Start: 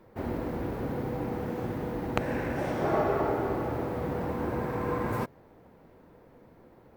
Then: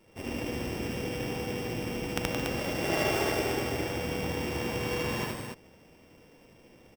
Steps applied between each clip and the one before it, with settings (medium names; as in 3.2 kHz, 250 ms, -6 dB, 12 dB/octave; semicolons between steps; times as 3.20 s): sorted samples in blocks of 16 samples; on a send: loudspeakers at several distances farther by 26 m 0 dB, 59 m -5 dB, 76 m -12 dB, 98 m -4 dB; on the sum: trim -5.5 dB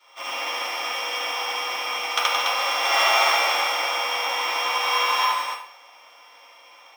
high-pass 890 Hz 24 dB/octave; reverberation RT60 0.60 s, pre-delay 3 ms, DRR -6.5 dB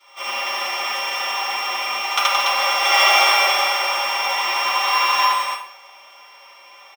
comb 5.1 ms, depth 85%; trim +1.5 dB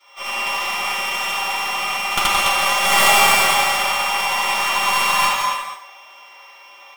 tracing distortion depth 0.13 ms; gated-style reverb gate 240 ms flat, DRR 2.5 dB; trim -1 dB